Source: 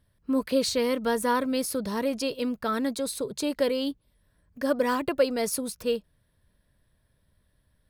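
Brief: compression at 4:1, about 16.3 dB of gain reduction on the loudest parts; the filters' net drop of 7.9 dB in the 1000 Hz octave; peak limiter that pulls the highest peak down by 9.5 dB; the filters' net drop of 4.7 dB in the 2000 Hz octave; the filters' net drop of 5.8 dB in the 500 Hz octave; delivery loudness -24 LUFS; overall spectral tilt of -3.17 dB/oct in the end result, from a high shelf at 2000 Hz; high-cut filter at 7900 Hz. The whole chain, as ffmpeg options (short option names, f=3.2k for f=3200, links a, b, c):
-af "lowpass=7.9k,equalizer=f=500:t=o:g=-4.5,equalizer=f=1k:t=o:g=-8,highshelf=f=2k:g=6.5,equalizer=f=2k:t=o:g=-7,acompressor=threshold=-43dB:ratio=4,volume=22dB,alimiter=limit=-14.5dB:level=0:latency=1"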